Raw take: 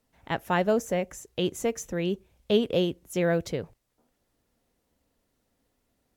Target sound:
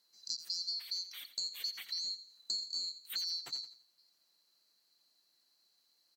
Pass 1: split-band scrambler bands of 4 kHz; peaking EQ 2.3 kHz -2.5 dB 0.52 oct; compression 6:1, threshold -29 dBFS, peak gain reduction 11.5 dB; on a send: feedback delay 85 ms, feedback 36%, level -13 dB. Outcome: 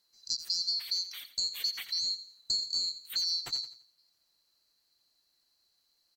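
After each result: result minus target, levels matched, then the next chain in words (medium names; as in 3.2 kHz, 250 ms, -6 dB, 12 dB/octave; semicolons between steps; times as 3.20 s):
compression: peak gain reduction -6.5 dB; 125 Hz band +6.0 dB
split-band scrambler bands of 4 kHz; peaking EQ 2.3 kHz -2.5 dB 0.52 oct; compression 6:1, threshold -37 dBFS, peak gain reduction 18 dB; on a send: feedback delay 85 ms, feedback 36%, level -13 dB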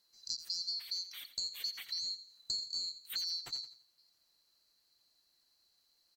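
125 Hz band +6.5 dB
split-band scrambler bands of 4 kHz; high-pass 150 Hz 24 dB/octave; peaking EQ 2.3 kHz -2.5 dB 0.52 oct; compression 6:1, threshold -37 dBFS, peak gain reduction 18 dB; on a send: feedback delay 85 ms, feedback 36%, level -13 dB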